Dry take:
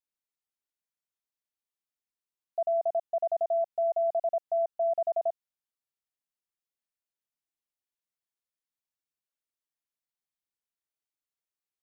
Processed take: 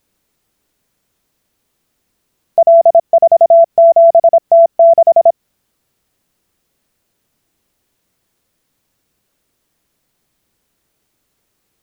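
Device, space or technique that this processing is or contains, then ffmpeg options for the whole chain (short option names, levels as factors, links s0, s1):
mastering chain: -af "equalizer=f=870:t=o:w=0.77:g=-2,acompressor=threshold=0.0224:ratio=2,tiltshelf=f=710:g=6,alimiter=level_in=37.6:limit=0.891:release=50:level=0:latency=1,volume=0.891"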